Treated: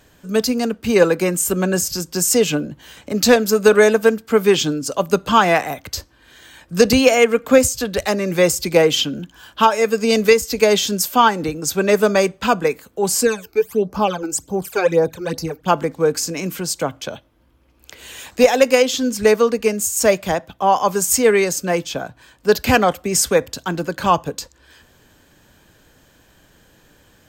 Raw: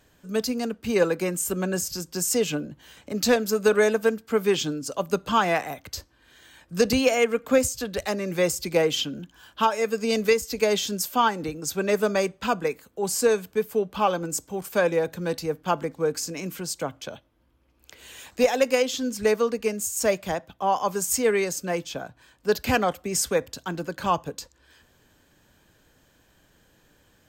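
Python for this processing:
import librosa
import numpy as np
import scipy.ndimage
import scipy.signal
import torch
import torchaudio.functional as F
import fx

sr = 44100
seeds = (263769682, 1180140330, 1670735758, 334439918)

y = fx.phaser_stages(x, sr, stages=12, low_hz=170.0, high_hz=3300.0, hz=fx.line((13.22, 0.94), (15.67, 3.4)), feedback_pct=35, at=(13.22, 15.67), fade=0.02)
y = y * 10.0 ** (8.0 / 20.0)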